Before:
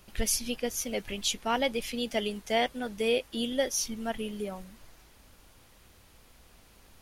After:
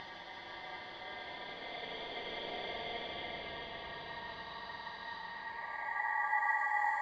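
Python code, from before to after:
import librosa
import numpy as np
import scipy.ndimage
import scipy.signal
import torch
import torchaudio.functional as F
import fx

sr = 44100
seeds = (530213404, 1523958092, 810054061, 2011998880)

p1 = fx.wiener(x, sr, points=25)
p2 = fx.lowpass(p1, sr, hz=2500.0, slope=6)
p3 = fx.low_shelf(p2, sr, hz=150.0, db=9.0)
p4 = fx.over_compress(p3, sr, threshold_db=-39.0, ratio=-1.0)
p5 = p3 + F.gain(torch.from_numpy(p4), 1.5).numpy()
p6 = fx.paulstretch(p5, sr, seeds[0], factor=4.2, window_s=1.0, from_s=1.98)
p7 = fx.filter_sweep_bandpass(p6, sr, from_hz=1700.0, to_hz=490.0, start_s=5.16, end_s=6.17, q=2.3)
p8 = p7 * np.sin(2.0 * np.pi * 1400.0 * np.arange(len(p7)) / sr)
p9 = fx.echo_bbd(p8, sr, ms=379, stages=4096, feedback_pct=61, wet_db=-6.5)
y = fx.rev_spring(p9, sr, rt60_s=3.1, pass_ms=(50,), chirp_ms=45, drr_db=3.5)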